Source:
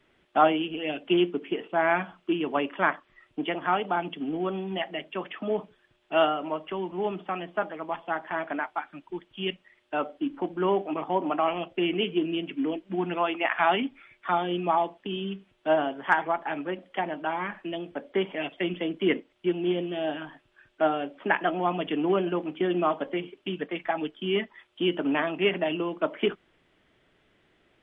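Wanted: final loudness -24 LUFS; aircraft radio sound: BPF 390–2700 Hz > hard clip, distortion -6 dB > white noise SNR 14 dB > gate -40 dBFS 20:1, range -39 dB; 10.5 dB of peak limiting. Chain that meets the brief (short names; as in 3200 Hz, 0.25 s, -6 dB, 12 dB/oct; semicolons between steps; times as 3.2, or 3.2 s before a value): limiter -18 dBFS; BPF 390–2700 Hz; hard clip -33 dBFS; white noise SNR 14 dB; gate -40 dBFS 20:1, range -39 dB; gain +13.5 dB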